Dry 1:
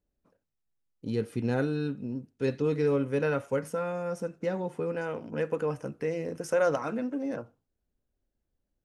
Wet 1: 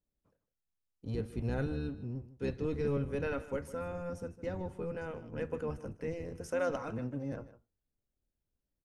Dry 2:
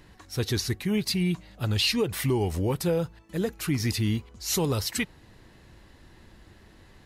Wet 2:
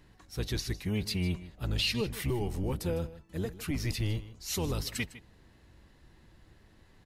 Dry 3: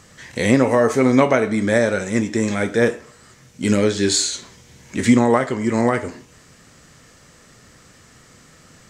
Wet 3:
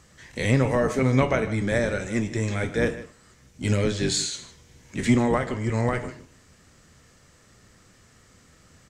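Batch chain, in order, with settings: octaver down 1 oct, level 0 dB; dynamic EQ 2700 Hz, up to +4 dB, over -39 dBFS, Q 1.2; on a send: echo 0.154 s -16 dB; on the sum: gain -8 dB

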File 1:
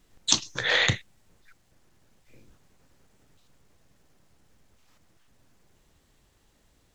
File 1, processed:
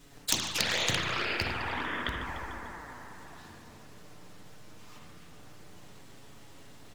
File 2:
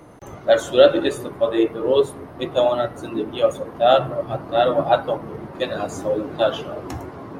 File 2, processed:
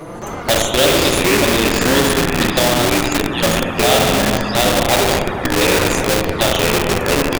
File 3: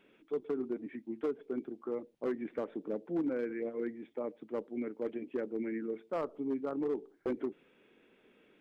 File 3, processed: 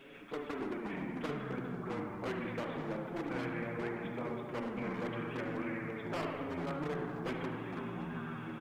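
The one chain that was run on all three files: spring tank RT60 1.2 s, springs 34/57 ms, chirp 50 ms, DRR 2.5 dB; envelope flanger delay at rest 7.4 ms, full sweep at -18 dBFS; on a send: feedback echo 74 ms, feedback 54%, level -21 dB; on the sum: echoes that change speed 0.148 s, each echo -6 st, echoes 2; in parallel at -7 dB: Schmitt trigger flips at -16.5 dBFS; on the sum: spectral compressor 2:1; gain -2 dB

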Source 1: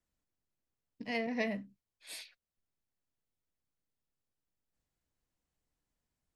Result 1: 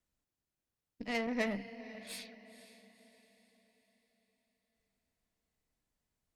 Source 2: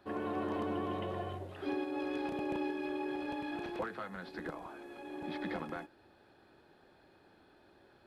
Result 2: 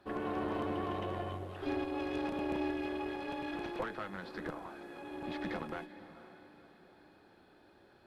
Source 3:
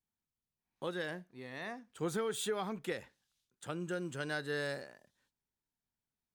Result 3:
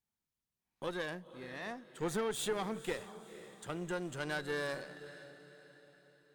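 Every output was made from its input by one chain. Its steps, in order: diffused feedback echo 0.501 s, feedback 45%, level -14 dB; added harmonics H 8 -23 dB, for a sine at -20 dBFS

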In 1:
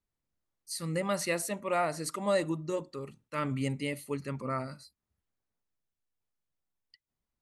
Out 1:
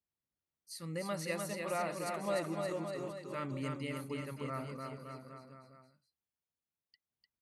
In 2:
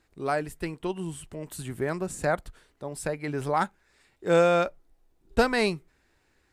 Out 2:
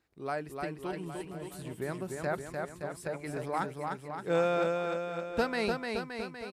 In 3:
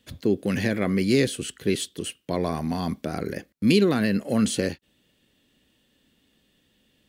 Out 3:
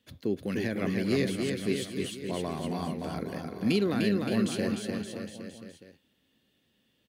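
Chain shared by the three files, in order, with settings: HPF 65 Hz; bell 7900 Hz -4.5 dB 0.62 oct; bouncing-ball echo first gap 0.3 s, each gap 0.9×, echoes 5; gain -7.5 dB

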